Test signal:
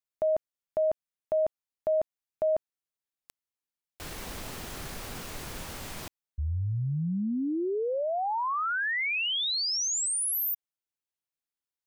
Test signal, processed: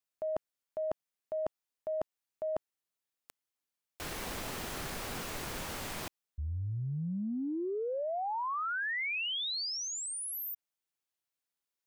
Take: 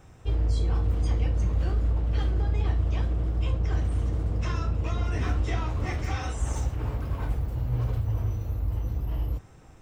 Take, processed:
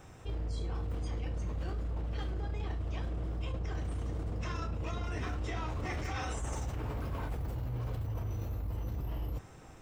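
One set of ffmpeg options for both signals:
-filter_complex "[0:a]acrossover=split=2900[a][b];[b]acompressor=threshold=-42dB:ratio=4:attack=1:release=60[c];[a][c]amix=inputs=2:normalize=0,lowshelf=f=160:g=-6,areverse,acompressor=threshold=-36dB:ratio=6:attack=7.6:release=68:knee=1:detection=peak,areverse,volume=2dB"

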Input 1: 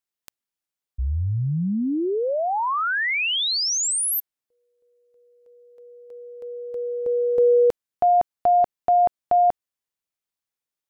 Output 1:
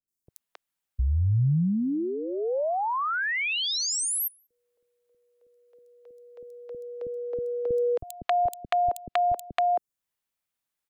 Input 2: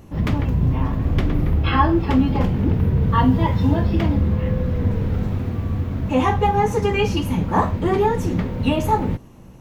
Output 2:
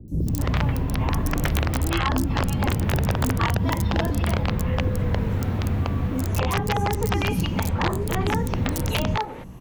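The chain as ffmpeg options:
-filter_complex "[0:a]acrossover=split=150|410[a][b][c];[a]acompressor=threshold=-27dB:ratio=3[d];[b]acompressor=threshold=-32dB:ratio=6[e];[c]acompressor=threshold=-34dB:ratio=2.5[f];[d][e][f]amix=inputs=3:normalize=0,aeval=exprs='(mod(7.08*val(0)+1,2)-1)/7.08':c=same,acrossover=split=390|5300[g][h][i];[i]adelay=80[j];[h]adelay=270[k];[g][k][j]amix=inputs=3:normalize=0,volume=3.5dB"

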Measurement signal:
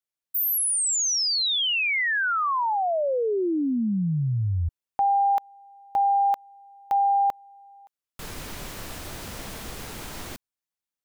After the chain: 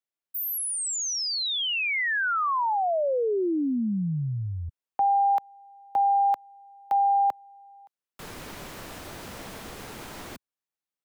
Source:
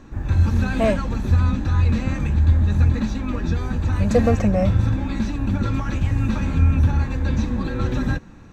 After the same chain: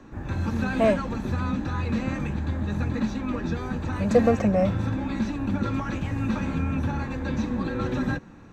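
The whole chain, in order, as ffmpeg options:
-filter_complex "[0:a]lowshelf=f=99:g=-10.5,acrossover=split=110|340|1800[a][b][c][d];[a]acompressor=threshold=-34dB:ratio=6:attack=14:release=137:knee=6[e];[e][b][c][d]amix=inputs=4:normalize=0,highshelf=f=2.7k:g=-6"

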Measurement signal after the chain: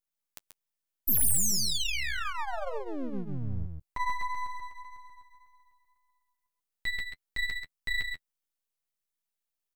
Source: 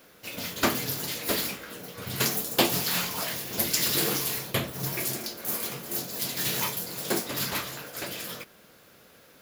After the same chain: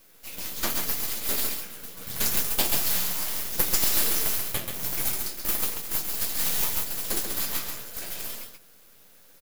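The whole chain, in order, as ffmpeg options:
-af "crystalizer=i=2:c=0,flanger=delay=8.8:depth=2.7:regen=-19:speed=1.8:shape=sinusoidal,aeval=exprs='max(val(0),0)':c=same,aecho=1:1:134:0.531"

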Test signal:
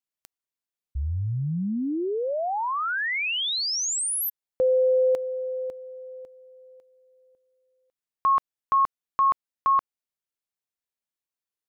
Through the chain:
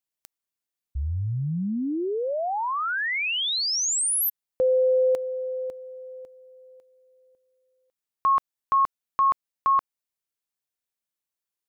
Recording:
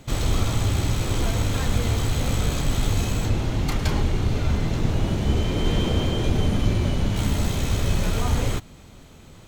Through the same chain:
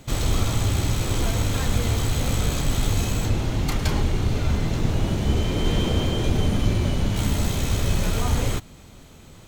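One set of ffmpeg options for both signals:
-af "highshelf=f=6.5k:g=4"

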